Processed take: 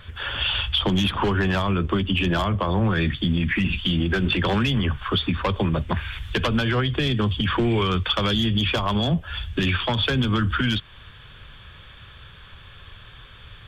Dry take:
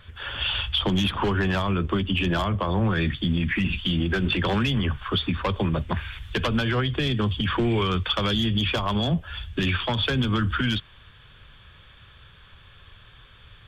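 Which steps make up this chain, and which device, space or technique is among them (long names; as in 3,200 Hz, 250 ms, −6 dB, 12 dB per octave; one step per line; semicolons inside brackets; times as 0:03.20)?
parallel compression (in parallel at −1 dB: downward compressor, threshold −33 dBFS, peak gain reduction 13 dB)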